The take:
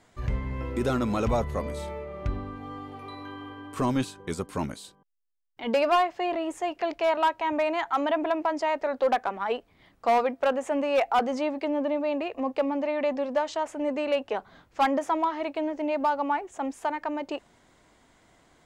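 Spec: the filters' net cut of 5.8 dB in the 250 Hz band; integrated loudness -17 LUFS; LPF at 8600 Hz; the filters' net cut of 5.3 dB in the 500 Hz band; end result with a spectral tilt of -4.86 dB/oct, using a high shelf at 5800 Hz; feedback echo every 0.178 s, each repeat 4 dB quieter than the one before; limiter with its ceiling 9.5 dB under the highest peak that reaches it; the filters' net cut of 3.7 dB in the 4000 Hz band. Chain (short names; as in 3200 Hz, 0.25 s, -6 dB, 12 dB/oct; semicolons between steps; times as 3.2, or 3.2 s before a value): LPF 8600 Hz; bell 250 Hz -5 dB; bell 500 Hz -6 dB; bell 4000 Hz -7.5 dB; high shelf 5800 Hz +6 dB; limiter -25.5 dBFS; feedback echo 0.178 s, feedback 63%, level -4 dB; gain +16.5 dB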